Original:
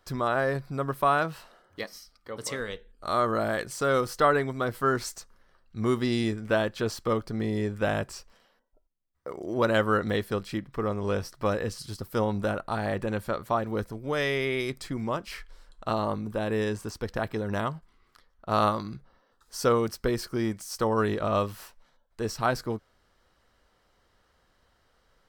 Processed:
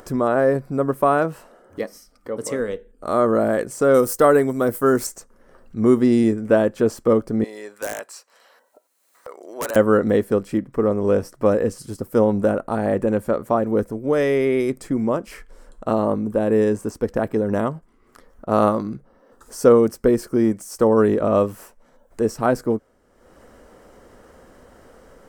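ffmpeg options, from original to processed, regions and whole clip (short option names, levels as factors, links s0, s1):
-filter_complex "[0:a]asettb=1/sr,asplit=3[s0][s1][s2];[s0]atrim=end=3.944[s3];[s1]atrim=start=3.94:end=5.07,asetpts=PTS-STARTPTS,afade=t=in:d=0.004:c=qsin,afade=t=out:st=1.126:d=0.004:c=qsin,agate=range=0.0224:threshold=0.00794:ratio=3:release=100:detection=peak,aemphasis=mode=production:type=50fm[s4];[s2]atrim=start=5.066[s5];[s3][s4]acrossfade=d=0.004:c1=hsin:c2=qsin[s6];[s6][s5]acrossfade=d=0.004:c1=qsin:c2=hsin,asettb=1/sr,asplit=3[s7][s8][s9];[s7]atrim=end=7.444[s10];[s8]atrim=start=7.44:end=9.76,asetpts=PTS-STARTPTS,afade=t=in:d=0.004:c=qsin,afade=t=out:st=2.316:d=0.004:c=qsin,highpass=1000,equalizer=f=4100:w=7.1:g=12,aeval=exprs='(mod(13.3*val(0)+1,2)-1)/13.3':c=same[s11];[s9]atrim=start=9.756[s12];[s10][s11]acrossfade=d=0.004:c1=hsin:c2=qsin[s13];[s13][s12]acrossfade=d=0.004:c1=qsin:c2=hsin,equalizer=f=250:t=o:w=1:g=9,equalizer=f=500:t=o:w=1:g=8,equalizer=f=4000:t=o:w=1:g=-11,equalizer=f=8000:t=o:w=1:g=5,acompressor=mode=upward:threshold=0.0141:ratio=2.5,volume=1.26"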